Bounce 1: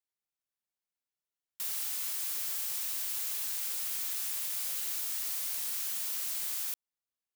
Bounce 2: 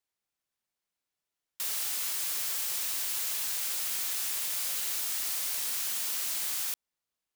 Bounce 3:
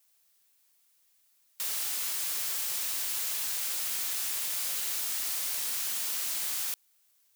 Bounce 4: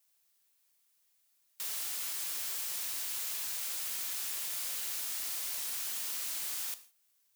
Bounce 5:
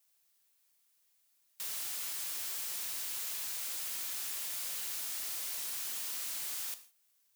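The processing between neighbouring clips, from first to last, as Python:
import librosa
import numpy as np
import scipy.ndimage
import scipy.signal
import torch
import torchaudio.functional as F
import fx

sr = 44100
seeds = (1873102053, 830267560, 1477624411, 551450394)

y1 = fx.high_shelf(x, sr, hz=9800.0, db=-5.0)
y1 = y1 * 10.0 ** (6.0 / 20.0)
y2 = fx.dmg_noise_colour(y1, sr, seeds[0], colour='blue', level_db=-68.0)
y3 = fx.rev_gated(y2, sr, seeds[1], gate_ms=190, shape='falling', drr_db=11.0)
y3 = y3 * 10.0 ** (-5.0 / 20.0)
y4 = 10.0 ** (-31.0 / 20.0) * np.tanh(y3 / 10.0 ** (-31.0 / 20.0))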